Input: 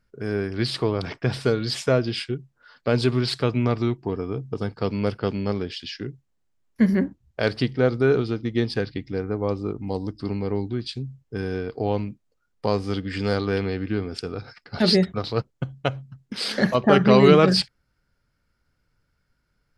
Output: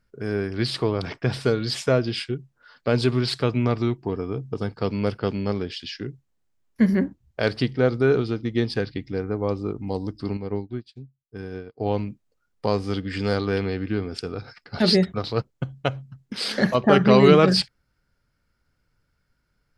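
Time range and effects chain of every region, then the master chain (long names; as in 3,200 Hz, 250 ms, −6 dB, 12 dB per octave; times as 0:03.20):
0:10.37–0:11.86: high-shelf EQ 3,000 Hz −3.5 dB + expander for the loud parts 2.5 to 1, over −43 dBFS
whole clip: no processing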